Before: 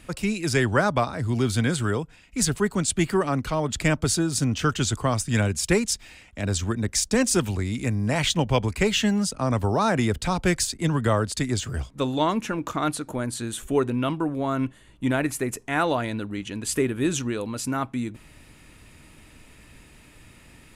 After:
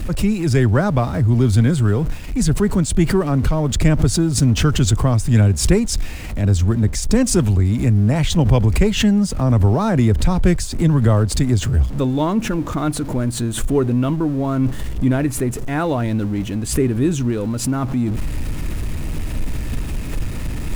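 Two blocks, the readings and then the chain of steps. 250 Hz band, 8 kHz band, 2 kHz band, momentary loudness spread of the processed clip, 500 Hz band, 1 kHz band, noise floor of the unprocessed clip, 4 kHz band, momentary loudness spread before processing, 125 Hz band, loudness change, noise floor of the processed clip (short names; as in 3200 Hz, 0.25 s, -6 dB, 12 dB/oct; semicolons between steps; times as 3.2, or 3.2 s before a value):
+7.5 dB, +2.0 dB, -0.5 dB, 12 LU, +4.0 dB, +0.5 dB, -52 dBFS, +1.5 dB, 8 LU, +11.0 dB, +6.5 dB, -26 dBFS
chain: zero-crossing step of -33.5 dBFS; high shelf 5300 Hz +10.5 dB; reverse; upward compressor, threshold -23 dBFS; reverse; tilt -3.5 dB/oct; backwards sustainer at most 100 dB/s; gain -1 dB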